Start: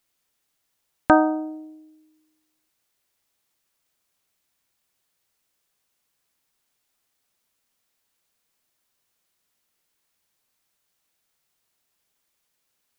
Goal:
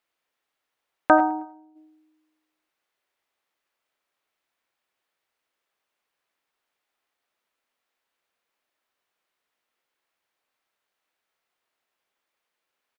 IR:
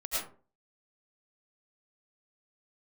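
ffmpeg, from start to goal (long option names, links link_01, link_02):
-filter_complex "[0:a]asplit=3[link_01][link_02][link_03];[link_01]afade=type=out:start_time=1.29:duration=0.02[link_04];[link_02]agate=range=-10dB:threshold=-29dB:ratio=16:detection=peak,afade=type=in:start_time=1.29:duration=0.02,afade=type=out:start_time=1.75:duration=0.02[link_05];[link_03]afade=type=in:start_time=1.75:duration=0.02[link_06];[link_04][link_05][link_06]amix=inputs=3:normalize=0,bass=frequency=250:gain=-14,treble=frequency=4000:gain=-14,aecho=1:1:105|210|315:0.0841|0.0337|0.0135,asplit=2[link_07][link_08];[1:a]atrim=start_sample=2205,afade=type=out:start_time=0.15:duration=0.01,atrim=end_sample=7056[link_09];[link_08][link_09]afir=irnorm=-1:irlink=0,volume=-10dB[link_10];[link_07][link_10]amix=inputs=2:normalize=0,volume=-1dB"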